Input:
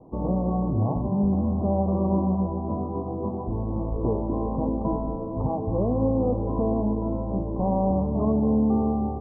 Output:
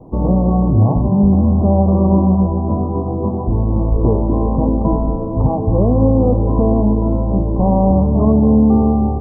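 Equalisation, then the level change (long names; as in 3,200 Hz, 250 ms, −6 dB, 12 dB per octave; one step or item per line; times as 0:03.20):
low-shelf EQ 140 Hz +7.5 dB
+8.0 dB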